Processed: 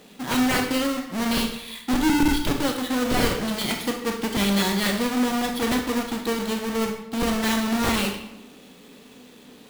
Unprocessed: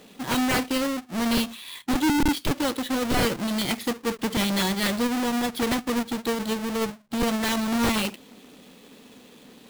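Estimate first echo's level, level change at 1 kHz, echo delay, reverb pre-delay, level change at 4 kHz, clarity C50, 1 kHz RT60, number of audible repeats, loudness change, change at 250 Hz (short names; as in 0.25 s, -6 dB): none, +1.5 dB, none, 23 ms, +1.5 dB, 6.0 dB, 0.90 s, none, +1.5 dB, +1.5 dB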